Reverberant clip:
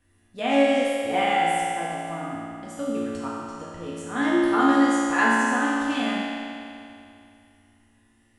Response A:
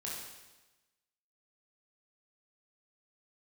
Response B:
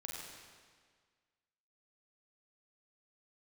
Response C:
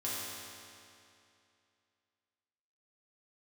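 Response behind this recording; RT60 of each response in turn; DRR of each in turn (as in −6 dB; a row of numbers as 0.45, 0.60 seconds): C; 1.1, 1.7, 2.6 seconds; −5.0, −3.0, −8.0 decibels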